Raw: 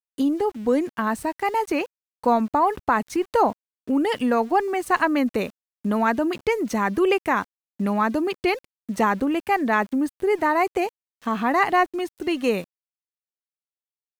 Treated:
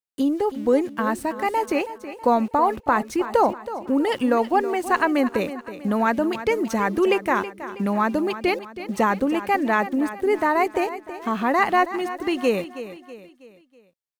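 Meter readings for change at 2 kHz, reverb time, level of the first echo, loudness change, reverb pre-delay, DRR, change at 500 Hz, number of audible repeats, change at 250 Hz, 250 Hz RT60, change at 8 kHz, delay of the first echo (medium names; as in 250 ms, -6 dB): +0.5 dB, no reverb, -13.0 dB, +0.5 dB, no reverb, no reverb, +1.5 dB, 4, +0.5 dB, no reverb, +0.5 dB, 323 ms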